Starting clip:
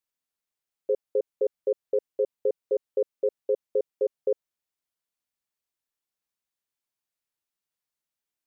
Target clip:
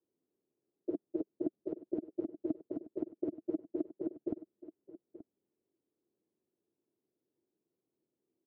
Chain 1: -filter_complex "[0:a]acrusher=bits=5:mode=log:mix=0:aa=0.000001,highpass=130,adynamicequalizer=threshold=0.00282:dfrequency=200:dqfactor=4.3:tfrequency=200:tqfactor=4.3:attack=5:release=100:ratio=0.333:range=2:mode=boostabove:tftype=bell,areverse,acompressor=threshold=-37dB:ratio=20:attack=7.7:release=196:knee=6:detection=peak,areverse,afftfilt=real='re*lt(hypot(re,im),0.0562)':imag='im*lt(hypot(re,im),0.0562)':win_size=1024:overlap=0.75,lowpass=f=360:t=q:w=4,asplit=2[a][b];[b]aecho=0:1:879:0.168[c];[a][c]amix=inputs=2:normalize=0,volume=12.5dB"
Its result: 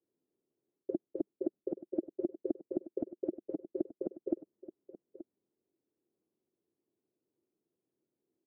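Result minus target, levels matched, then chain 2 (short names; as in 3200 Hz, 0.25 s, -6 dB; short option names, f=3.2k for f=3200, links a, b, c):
compressor: peak gain reduction +10.5 dB
-filter_complex "[0:a]acrusher=bits=5:mode=log:mix=0:aa=0.000001,highpass=130,adynamicequalizer=threshold=0.00282:dfrequency=200:dqfactor=4.3:tfrequency=200:tqfactor=4.3:attack=5:release=100:ratio=0.333:range=2:mode=boostabove:tftype=bell,areverse,acompressor=threshold=-26dB:ratio=20:attack=7.7:release=196:knee=6:detection=peak,areverse,afftfilt=real='re*lt(hypot(re,im),0.0562)':imag='im*lt(hypot(re,im),0.0562)':win_size=1024:overlap=0.75,lowpass=f=360:t=q:w=4,asplit=2[a][b];[b]aecho=0:1:879:0.168[c];[a][c]amix=inputs=2:normalize=0,volume=12.5dB"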